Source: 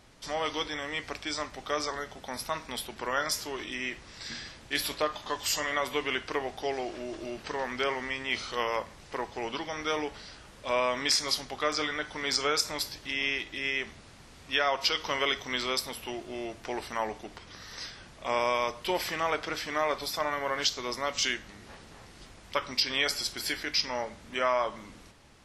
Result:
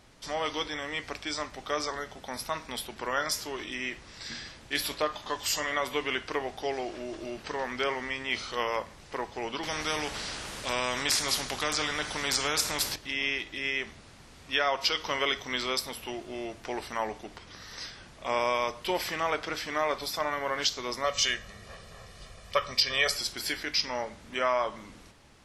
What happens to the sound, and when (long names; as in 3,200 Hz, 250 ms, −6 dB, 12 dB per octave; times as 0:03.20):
0:09.63–0:12.96: every bin compressed towards the loudest bin 2 to 1
0:21.04–0:23.17: comb filter 1.7 ms, depth 74%